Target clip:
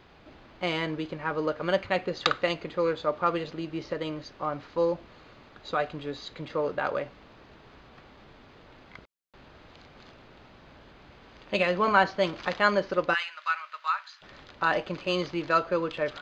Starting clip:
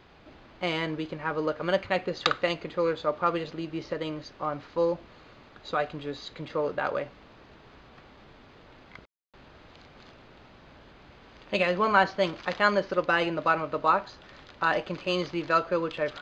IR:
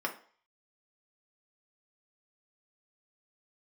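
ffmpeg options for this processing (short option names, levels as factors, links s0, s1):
-filter_complex "[0:a]asettb=1/sr,asplit=3[s0][s1][s2];[s0]atrim=end=11.884[s3];[s1]atrim=start=11.88:end=12.53,asetpts=PTS-STARTPTS,afade=t=in:d=0.004:c=qsin,afade=t=out:st=0.646:d=0.004:c=qsin,acompressor=mode=upward:threshold=0.0562:ratio=2.5[s4];[s2]atrim=start=12.526[s5];[s3][s4]acrossfade=d=0.004:c1=hsin:c2=qsin[s6];[s6][s5]acrossfade=d=0.004:c1=qsin:c2=hsin,asplit=3[s7][s8][s9];[s7]afade=t=out:st=13.13:d=0.02[s10];[s8]highpass=f=1300:w=0.5412,highpass=f=1300:w=1.3066,afade=t=in:st=13.13:d=0.02,afade=t=out:st=14.21:d=0.02[s11];[s9]afade=t=in:st=14.21:d=0.02[s12];[s10][s11][s12]amix=inputs=3:normalize=0"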